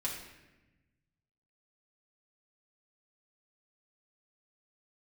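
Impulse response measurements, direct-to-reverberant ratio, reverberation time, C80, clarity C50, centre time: −5.0 dB, 1.0 s, 6.0 dB, 4.0 dB, 45 ms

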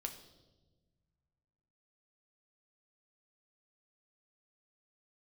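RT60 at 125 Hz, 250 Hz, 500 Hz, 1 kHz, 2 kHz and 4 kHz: 2.6, 2.0, 1.5, 0.95, 0.80, 1.0 seconds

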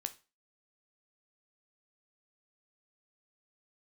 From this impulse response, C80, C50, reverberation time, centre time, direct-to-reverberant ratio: 23.0 dB, 17.0 dB, 0.30 s, 5 ms, 8.5 dB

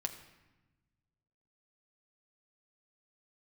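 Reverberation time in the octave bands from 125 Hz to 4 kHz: 2.1, 1.7, 1.1, 1.1, 1.1, 0.85 seconds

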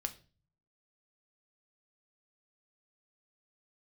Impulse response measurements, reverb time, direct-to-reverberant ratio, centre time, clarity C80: 0.35 s, 7.0 dB, 6 ms, 21.0 dB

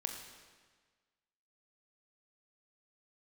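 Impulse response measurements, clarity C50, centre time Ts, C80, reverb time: 5.5 dB, 40 ms, 6.5 dB, 1.5 s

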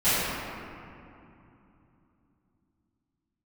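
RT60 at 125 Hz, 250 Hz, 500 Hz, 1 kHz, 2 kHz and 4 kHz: 4.3, 4.3, 2.8, 2.8, 2.3, 1.5 seconds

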